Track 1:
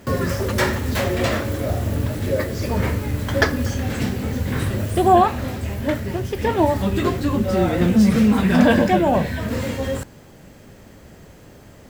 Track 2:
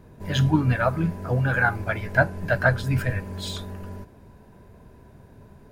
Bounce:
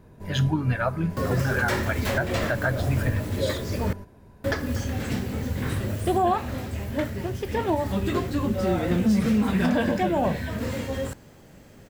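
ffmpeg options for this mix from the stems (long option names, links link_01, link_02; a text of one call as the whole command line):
ffmpeg -i stem1.wav -i stem2.wav -filter_complex "[0:a]adelay=1100,volume=-5dB,asplit=3[link_01][link_02][link_03];[link_01]atrim=end=3.93,asetpts=PTS-STARTPTS,afade=type=out:start_time=3.926:duration=0.004:curve=hsin[link_04];[link_02]atrim=start=3.93:end=4.44,asetpts=PTS-STARTPTS,volume=0[link_05];[link_03]atrim=start=4.44,asetpts=PTS-STARTPTS,afade=type=in:duration=0.004:curve=hsin[link_06];[link_04][link_05][link_06]concat=n=3:v=0:a=1[link_07];[1:a]volume=-2dB[link_08];[link_07][link_08]amix=inputs=2:normalize=0,alimiter=limit=-13.5dB:level=0:latency=1:release=162" out.wav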